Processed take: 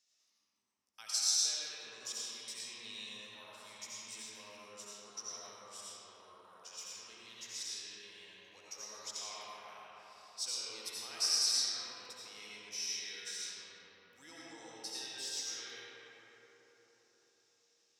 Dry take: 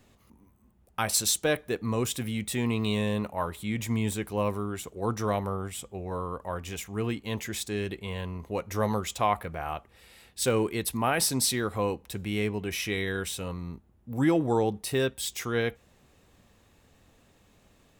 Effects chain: band-pass 5500 Hz, Q 5.3; digital reverb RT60 4.5 s, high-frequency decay 0.4×, pre-delay 45 ms, DRR -8 dB

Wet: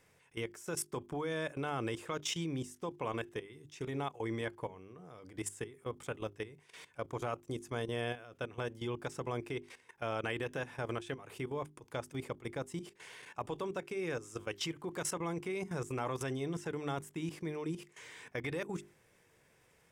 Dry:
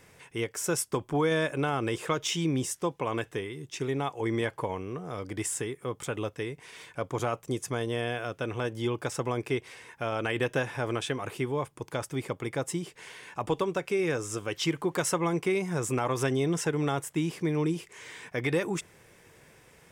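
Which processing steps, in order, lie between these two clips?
level quantiser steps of 16 dB; notches 50/100/150/200/250/300/350/400 Hz; gain -4 dB

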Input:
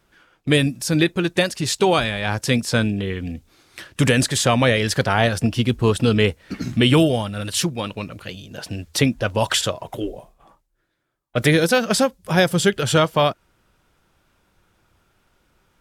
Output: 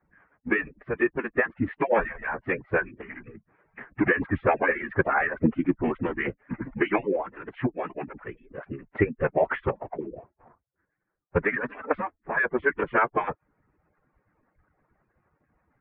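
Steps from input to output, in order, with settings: median-filter separation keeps percussive; formant-preserving pitch shift -6 st; steep low-pass 2100 Hz 48 dB/oct

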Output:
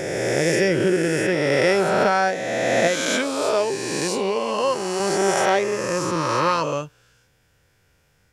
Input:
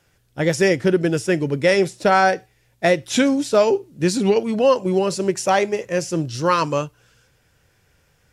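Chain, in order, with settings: spectral swells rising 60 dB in 2.55 s; 2.87–5 low shelf 330 Hz -10.5 dB; gain -5.5 dB

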